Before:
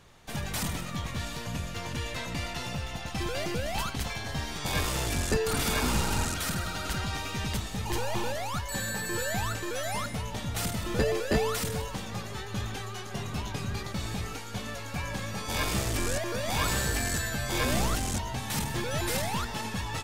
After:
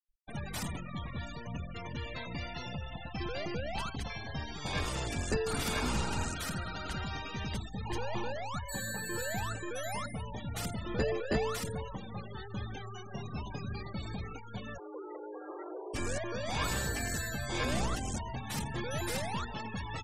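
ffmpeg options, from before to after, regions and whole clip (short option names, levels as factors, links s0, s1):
-filter_complex "[0:a]asettb=1/sr,asplit=3[s0][s1][s2];[s0]atrim=end=14.784[s3];[s1]atrim=start=14.78:end=15.94,asetpts=PTS-STARTPTS,afade=t=in:d=0.004:c=qsin,afade=t=out:st=1.156:d=0.004:c=qsin,lowpass=1100,acompressor=threshold=0.0178:ratio=4:attack=3.2:release=140:knee=1:detection=peak,afreqshift=310[s4];[s2]atrim=start=15.936[s5];[s3][s4]acrossfade=d=0.004:c1=hsin:c2=qsin[s6];[s6][s5]acrossfade=d=0.004:c1=qsin:c2=hsin,bandreject=f=50:t=h:w=6,bandreject=f=100:t=h:w=6,afftfilt=real='re*gte(hypot(re,im),0.02)':imag='im*gte(hypot(re,im),0.02)':win_size=1024:overlap=0.75,volume=0.596"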